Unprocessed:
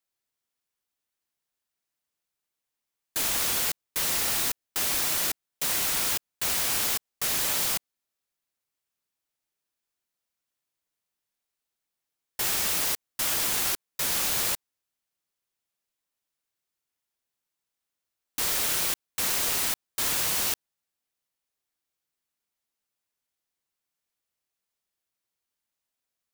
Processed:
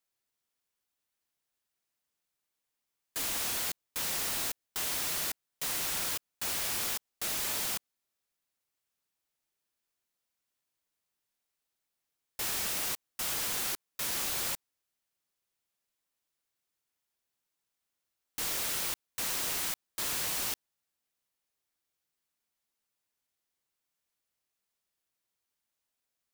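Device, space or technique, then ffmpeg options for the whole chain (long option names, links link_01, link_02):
saturation between pre-emphasis and de-emphasis: -af "highshelf=frequency=11000:gain=7.5,asoftclip=type=tanh:threshold=-26.5dB,highshelf=frequency=11000:gain=-7.5"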